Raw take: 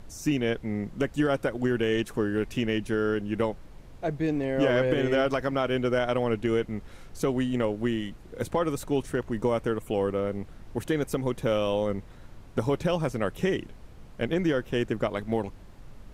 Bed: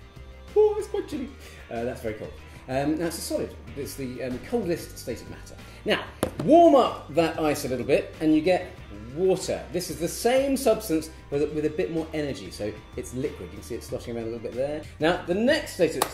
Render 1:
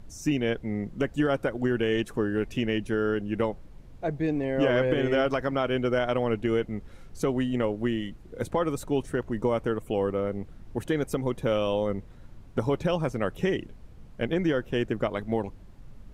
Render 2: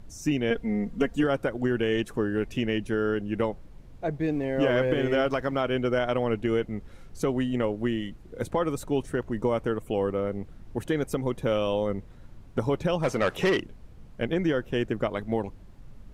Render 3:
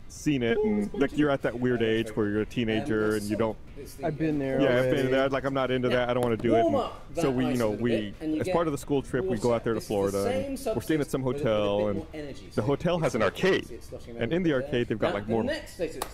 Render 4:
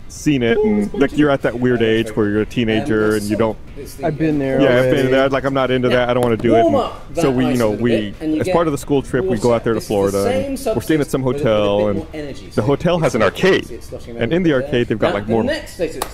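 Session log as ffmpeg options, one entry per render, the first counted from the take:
-af "afftdn=nr=6:nf=-47"
-filter_complex "[0:a]asettb=1/sr,asplit=3[a][b][c];[a]atrim=end=0.504[d];[b]atrim=start=0.5:end=1.24,asetpts=PTS-STARTPTS,afade=t=in:d=0.004:c=qsin,afade=t=out:st=0.736:d=0.004:c=qsin,aecho=1:1:4.3:0.76,atrim=end_sample=32634[e];[c]atrim=start=1.236[f];[d][e]acrossfade=d=0.004:c1=hsin:c2=qsin[g];[g][f]acrossfade=d=0.004:c1=qsin:c2=hsin,asettb=1/sr,asplit=3[h][i][j];[h]atrim=end=4.144[k];[i]atrim=start=4.14:end=5.61,asetpts=PTS-STARTPTS,afade=t=in:d=0.004:c=qsin,afade=t=out:st=1.466:d=0.004:c=qsin,aeval=exprs='sgn(val(0))*max(abs(val(0))-0.00158,0)':c=same[l];[j]atrim=start=5.606[m];[k][l]acrossfade=d=0.004:c1=hsin:c2=qsin[n];[n][m]acrossfade=d=0.004:c1=qsin:c2=hsin,asplit=3[o][p][q];[o]afade=t=out:st=13.02:d=0.02[r];[p]asplit=2[s][t];[t]highpass=f=720:p=1,volume=19dB,asoftclip=type=tanh:threshold=-15dB[u];[s][u]amix=inputs=2:normalize=0,lowpass=f=4.8k:p=1,volume=-6dB,afade=t=in:st=13.02:d=0.02,afade=t=out:st=13.59:d=0.02[v];[q]afade=t=in:st=13.59:d=0.02[w];[r][v][w]amix=inputs=3:normalize=0"
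-filter_complex "[1:a]volume=-9dB[a];[0:a][a]amix=inputs=2:normalize=0"
-af "volume=10.5dB,alimiter=limit=-1dB:level=0:latency=1"

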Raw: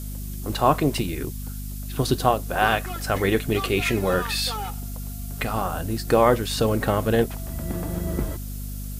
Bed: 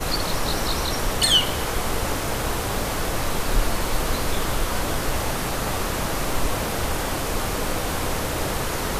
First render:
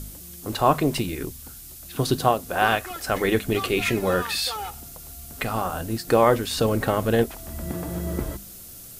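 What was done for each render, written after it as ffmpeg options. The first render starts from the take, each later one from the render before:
-af "bandreject=f=50:t=h:w=4,bandreject=f=100:t=h:w=4,bandreject=f=150:t=h:w=4,bandreject=f=200:t=h:w=4,bandreject=f=250:t=h:w=4"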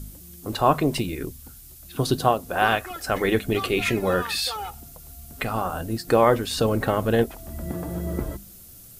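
-af "afftdn=nr=6:nf=-42"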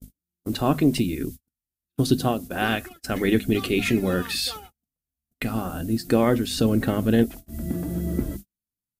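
-af "equalizer=f=250:t=o:w=1:g=8,equalizer=f=500:t=o:w=1:g=-4,equalizer=f=1k:t=o:w=1:g=-9,agate=range=-47dB:threshold=-34dB:ratio=16:detection=peak"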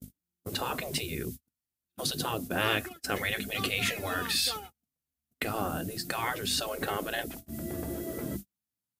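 -af "afftfilt=real='re*lt(hypot(re,im),0.224)':imag='im*lt(hypot(re,im),0.224)':win_size=1024:overlap=0.75,highpass=76"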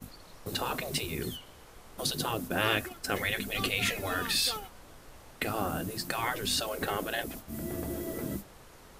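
-filter_complex "[1:a]volume=-27.5dB[a];[0:a][a]amix=inputs=2:normalize=0"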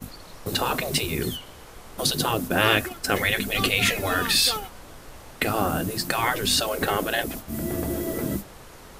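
-af "volume=8dB"

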